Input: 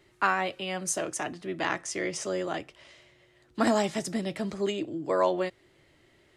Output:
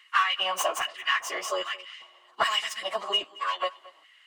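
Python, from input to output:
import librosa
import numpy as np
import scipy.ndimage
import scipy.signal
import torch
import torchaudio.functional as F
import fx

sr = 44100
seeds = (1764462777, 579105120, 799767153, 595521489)

p1 = fx.tracing_dist(x, sr, depth_ms=0.043)
p2 = fx.small_body(p1, sr, hz=(1100.0, 2900.0), ring_ms=30, db=18)
p3 = 10.0 ** (-22.0 / 20.0) * np.tanh(p2 / 10.0 ** (-22.0 / 20.0))
p4 = p2 + (p3 * librosa.db_to_amplitude(-5.0))
p5 = fx.filter_lfo_highpass(p4, sr, shape='square', hz=0.83, low_hz=720.0, high_hz=1900.0, q=2.4)
p6 = fx.stretch_vocoder_free(p5, sr, factor=0.67)
y = p6 + fx.echo_single(p6, sr, ms=223, db=-21.0, dry=0)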